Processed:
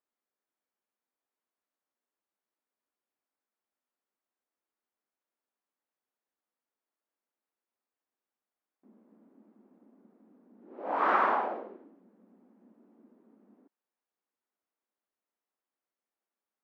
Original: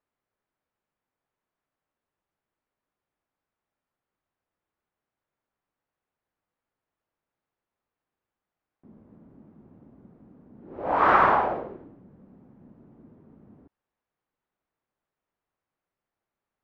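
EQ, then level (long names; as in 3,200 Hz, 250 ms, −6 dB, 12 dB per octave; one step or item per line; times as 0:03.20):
linear-phase brick-wall high-pass 190 Hz
−7.0 dB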